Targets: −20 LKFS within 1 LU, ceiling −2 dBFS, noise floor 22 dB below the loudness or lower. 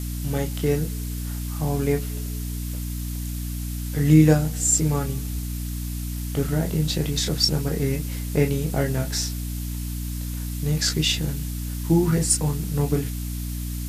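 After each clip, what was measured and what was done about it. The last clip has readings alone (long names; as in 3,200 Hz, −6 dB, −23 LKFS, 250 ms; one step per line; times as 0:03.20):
mains hum 60 Hz; hum harmonics up to 300 Hz; level of the hum −27 dBFS; background noise floor −30 dBFS; target noise floor −46 dBFS; integrated loudness −24.0 LKFS; sample peak −3.5 dBFS; target loudness −20.0 LKFS
→ hum removal 60 Hz, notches 5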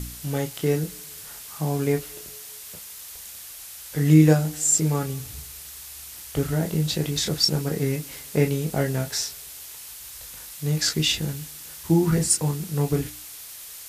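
mains hum none found; background noise floor −41 dBFS; target noise floor −46 dBFS
→ noise reduction from a noise print 6 dB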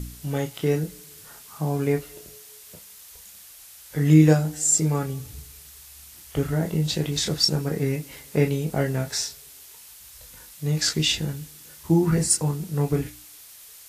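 background noise floor −47 dBFS; integrated loudness −23.5 LKFS; sample peak −4.5 dBFS; target loudness −20.0 LKFS
→ level +3.5 dB
brickwall limiter −2 dBFS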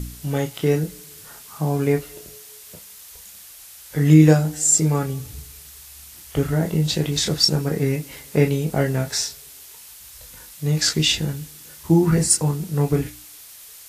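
integrated loudness −20.0 LKFS; sample peak −2.0 dBFS; background noise floor −43 dBFS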